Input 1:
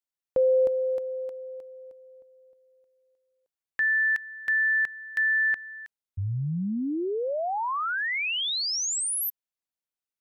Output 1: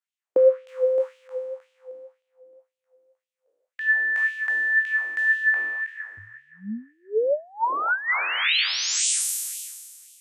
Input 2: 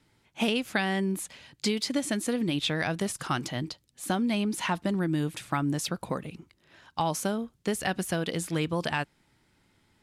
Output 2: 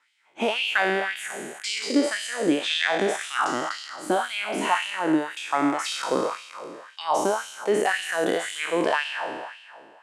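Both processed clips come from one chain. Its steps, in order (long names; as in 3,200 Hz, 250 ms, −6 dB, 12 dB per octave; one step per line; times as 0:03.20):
peak hold with a decay on every bin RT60 1.96 s
high-frequency loss of the air 170 metres
auto-filter high-pass sine 1.9 Hz 310–3,000 Hz
high shelf with overshoot 6,500 Hz +13 dB, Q 1.5
level +1.5 dB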